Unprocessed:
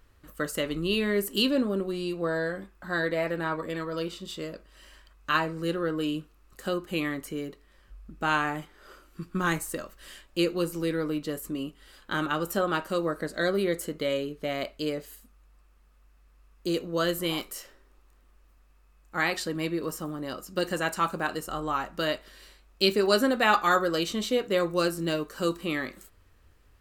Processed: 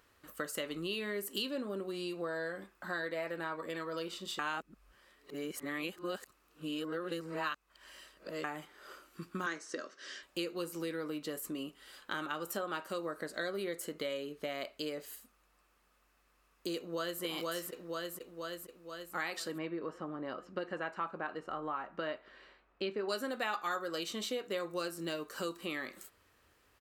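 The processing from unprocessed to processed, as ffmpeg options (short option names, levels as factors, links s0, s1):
-filter_complex "[0:a]asettb=1/sr,asplit=3[s0][s1][s2];[s0]atrim=end=9.464[s3];[s1]atrim=start=9.46:end=10.23,asetpts=PTS-STARTPTS,afade=t=in:d=0.004:c=qsin,afade=t=out:st=0.766:d=0.004:c=qsin,highpass=270,equalizer=f=270:t=q:w=4:g=7,equalizer=f=410:t=q:w=4:g=6,equalizer=f=870:t=q:w=4:g=-8,equalizer=f=1600:t=q:w=4:g=5,equalizer=f=2600:t=q:w=4:g=-4,equalizer=f=5700:t=q:w=4:g=10,lowpass=f=6200:w=0.5412,lowpass=f=6200:w=1.3066[s4];[s2]atrim=start=10.226[s5];[s3][s4]acrossfade=d=0.004:c1=hsin:c2=qsin[s6];[s6][s5]acrossfade=d=0.004:c1=qsin:c2=hsin,asplit=2[s7][s8];[s8]afade=t=in:st=16.76:d=0.01,afade=t=out:st=17.22:d=0.01,aecho=0:1:480|960|1440|1920|2400|2880|3360|3840:0.794328|0.436881|0.240284|0.132156|0.072686|0.0399773|0.0219875|0.0120931[s9];[s7][s9]amix=inputs=2:normalize=0,asettb=1/sr,asplit=3[s10][s11][s12];[s10]atrim=end=19.584[s13];[s11]atrim=start=19.58:end=23.09,asetpts=PTS-STARTPTS,afade=t=in:d=0.004:c=qsin,afade=t=out:st=3.506:d=0.004:c=qsin,lowpass=2000[s14];[s12]atrim=start=23.086[s15];[s13][s14]acrossfade=d=0.004:c1=hsin:c2=qsin[s16];[s16][s15]acrossfade=d=0.004:c1=qsin:c2=hsin,asplit=3[s17][s18][s19];[s17]atrim=end=4.392[s20];[s18]atrim=start=4.388:end=8.442,asetpts=PTS-STARTPTS,areverse[s21];[s19]atrim=start=8.438[s22];[s20][s21]acrossfade=d=0.004:c1=hsin:c2=hsin[s23];[s23][s22]acrossfade=d=0.004:c1=hsin:c2=hsin,highpass=f=390:p=1,acompressor=threshold=0.0141:ratio=3"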